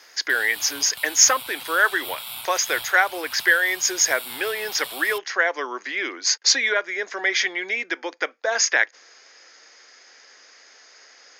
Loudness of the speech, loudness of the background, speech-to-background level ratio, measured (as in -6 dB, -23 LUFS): -21.0 LUFS, -33.5 LUFS, 12.5 dB